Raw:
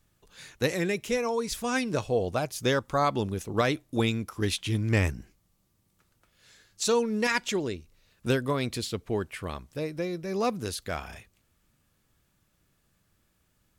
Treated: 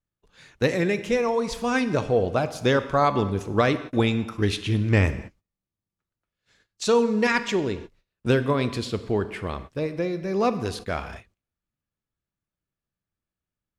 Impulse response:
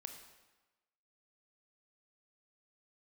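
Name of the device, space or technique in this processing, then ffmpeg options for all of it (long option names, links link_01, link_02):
keyed gated reverb: -filter_complex "[0:a]aemphasis=mode=reproduction:type=50fm,agate=range=-18dB:threshold=-59dB:ratio=16:detection=peak,asplit=3[link_01][link_02][link_03];[1:a]atrim=start_sample=2205[link_04];[link_02][link_04]afir=irnorm=-1:irlink=0[link_05];[link_03]apad=whole_len=608076[link_06];[link_05][link_06]sidechaingate=range=-44dB:threshold=-44dB:ratio=16:detection=peak,volume=4.5dB[link_07];[link_01][link_07]amix=inputs=2:normalize=0,volume=-1dB"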